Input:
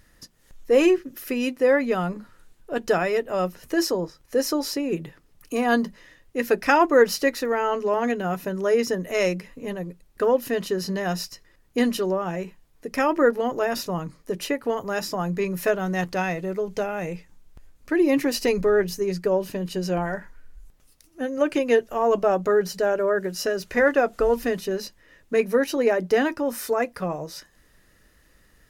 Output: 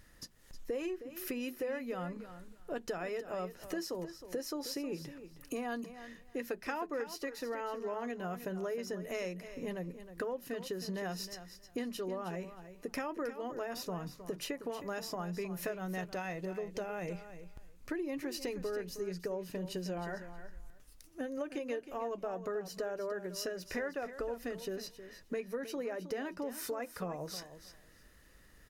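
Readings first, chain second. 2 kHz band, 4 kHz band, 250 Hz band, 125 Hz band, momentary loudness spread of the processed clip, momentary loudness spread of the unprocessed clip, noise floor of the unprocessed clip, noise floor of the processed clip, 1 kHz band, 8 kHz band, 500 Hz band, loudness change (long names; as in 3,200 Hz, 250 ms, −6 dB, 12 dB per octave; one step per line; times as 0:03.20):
−16.5 dB, −12.0 dB, −15.0 dB, −12.5 dB, 9 LU, 12 LU, −59 dBFS, −60 dBFS, −16.5 dB, −11.5 dB, −16.5 dB, −16.0 dB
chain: downward compressor 6 to 1, threshold −33 dBFS, peak gain reduction 20 dB
repeating echo 314 ms, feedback 17%, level −12 dB
level −3.5 dB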